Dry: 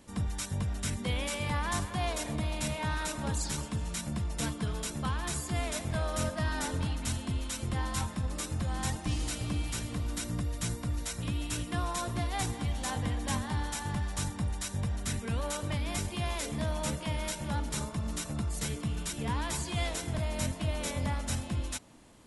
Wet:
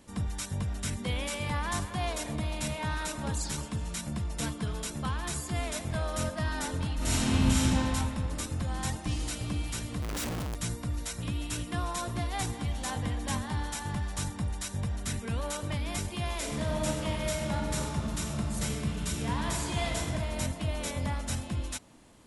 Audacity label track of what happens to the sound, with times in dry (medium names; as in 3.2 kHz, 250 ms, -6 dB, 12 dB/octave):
6.950000	7.630000	reverb throw, RT60 2.8 s, DRR -10 dB
10.020000	10.550000	Schmitt trigger flips at -48.5 dBFS
16.340000	20.000000	reverb throw, RT60 2.5 s, DRR 1 dB